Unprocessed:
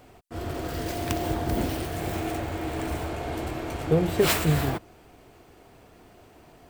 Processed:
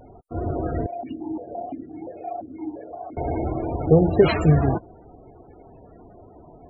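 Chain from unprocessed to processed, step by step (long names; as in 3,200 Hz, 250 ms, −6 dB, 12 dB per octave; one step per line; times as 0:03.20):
pitch vibrato 0.62 Hz 15 cents
spectral peaks only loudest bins 32
0:00.86–0:03.17: formant filter that steps through the vowels 5.8 Hz
level +6.5 dB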